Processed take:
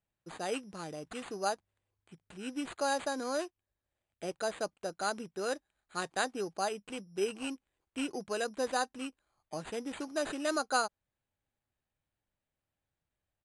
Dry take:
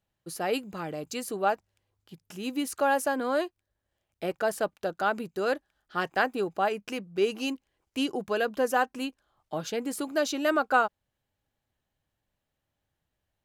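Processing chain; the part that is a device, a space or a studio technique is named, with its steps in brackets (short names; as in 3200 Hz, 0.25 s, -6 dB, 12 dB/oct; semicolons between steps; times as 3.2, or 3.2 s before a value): crushed at another speed (playback speed 2×; sample-and-hold 4×; playback speed 0.5×); gain -7 dB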